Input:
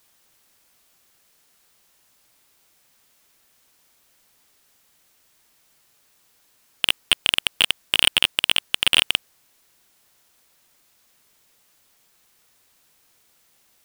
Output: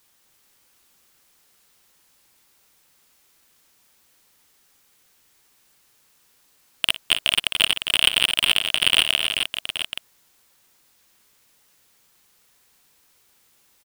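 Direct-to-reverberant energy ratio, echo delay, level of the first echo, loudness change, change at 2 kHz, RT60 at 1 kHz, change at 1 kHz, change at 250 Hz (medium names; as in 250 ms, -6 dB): no reverb, 57 ms, -15.5 dB, -0.5 dB, +1.0 dB, no reverb, +0.5 dB, +0.5 dB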